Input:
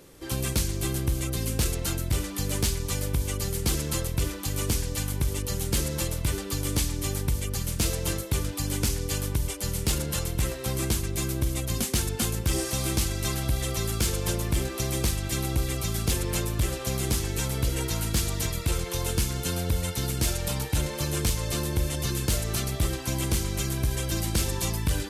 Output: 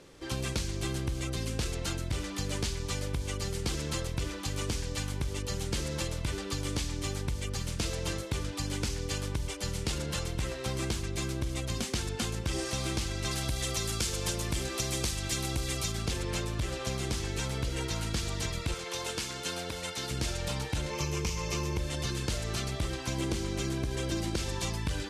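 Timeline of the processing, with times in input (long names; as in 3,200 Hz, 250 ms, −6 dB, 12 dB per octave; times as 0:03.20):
0:13.31–0:15.92: high-shelf EQ 4,700 Hz +10.5 dB
0:18.74–0:20.11: high-pass filter 440 Hz 6 dB per octave
0:20.91–0:21.78: EQ curve with evenly spaced ripples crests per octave 0.78, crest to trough 9 dB
0:23.18–0:24.36: parametric band 330 Hz +7 dB 1.5 octaves
whole clip: low-pass filter 6,300 Hz 12 dB per octave; low-shelf EQ 470 Hz −3.5 dB; downward compressor, threshold −28 dBFS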